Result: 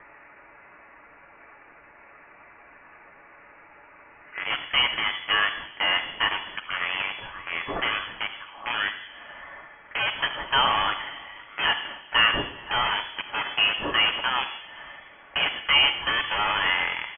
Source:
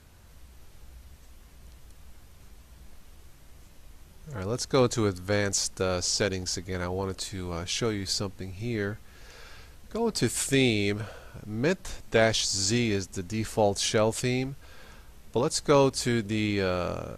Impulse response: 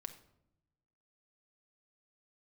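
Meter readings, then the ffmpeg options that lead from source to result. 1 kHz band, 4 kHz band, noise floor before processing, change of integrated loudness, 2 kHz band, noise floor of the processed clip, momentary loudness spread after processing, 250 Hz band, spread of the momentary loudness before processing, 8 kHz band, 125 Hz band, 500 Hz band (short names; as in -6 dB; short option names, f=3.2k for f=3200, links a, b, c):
+7.5 dB, +9.5 dB, -53 dBFS, +3.5 dB, +10.5 dB, -51 dBFS, 17 LU, -13.5 dB, 12 LU, under -40 dB, -15.5 dB, -11.5 dB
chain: -filter_complex "[0:a]highpass=220,aecho=1:1:3.6:0.31,adynamicequalizer=threshold=0.0158:dfrequency=410:dqfactor=1.1:tfrequency=410:tqfactor=1.1:attack=5:release=100:ratio=0.375:range=2.5:mode=cutabove:tftype=bell,acrossover=split=860[a][b];[a]acrusher=bits=4:mix=0:aa=0.000001[c];[c][b]amix=inputs=2:normalize=0,tiltshelf=f=700:g=-8.5,asplit=2[d][e];[e]alimiter=limit=-15.5dB:level=0:latency=1,volume=-3dB[f];[d][f]amix=inputs=2:normalize=0[g];[1:a]atrim=start_sample=2205,asetrate=29106,aresample=44100[h];[g][h]afir=irnorm=-1:irlink=0,acompressor=mode=upward:threshold=-36dB:ratio=2.5,asplit=2[i][j];[j]adelay=519,volume=-22dB,highshelf=f=4k:g=-11.7[k];[i][k]amix=inputs=2:normalize=0,lowpass=f=2.9k:t=q:w=0.5098,lowpass=f=2.9k:t=q:w=0.6013,lowpass=f=2.9k:t=q:w=0.9,lowpass=f=2.9k:t=q:w=2.563,afreqshift=-3400,volume=1dB"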